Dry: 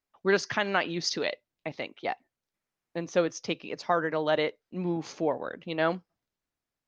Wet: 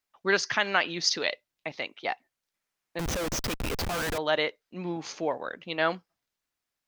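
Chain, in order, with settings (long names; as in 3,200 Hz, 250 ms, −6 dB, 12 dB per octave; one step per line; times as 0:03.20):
tilt shelving filter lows −5 dB, about 740 Hz
0:02.99–0:04.18: comparator with hysteresis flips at −39 dBFS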